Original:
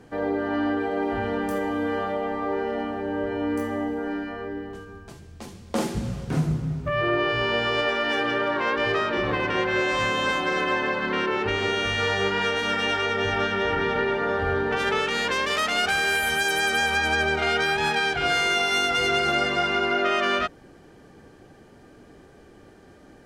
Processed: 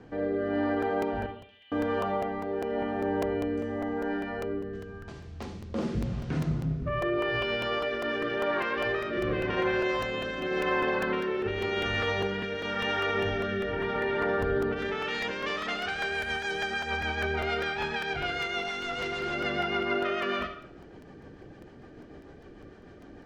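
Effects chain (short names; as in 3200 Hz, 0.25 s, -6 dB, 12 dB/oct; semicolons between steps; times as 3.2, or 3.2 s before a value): in parallel at -2.5 dB: compressor, threshold -36 dBFS, peak gain reduction 16.5 dB; on the sum: limiter -15.5 dBFS, peak gain reduction 7 dB; rotary speaker horn 0.9 Hz, later 6.7 Hz, at 14.96; 1.26–1.72 Butterworth band-pass 3100 Hz, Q 3; 18.62–19.34 hard clip -26.5 dBFS, distortion -24 dB; air absorption 130 m; on a send at -7 dB: reverb RT60 0.60 s, pre-delay 40 ms; on the sum: crackling interface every 0.20 s, samples 128, repeat, from 0.82; gain -2.5 dB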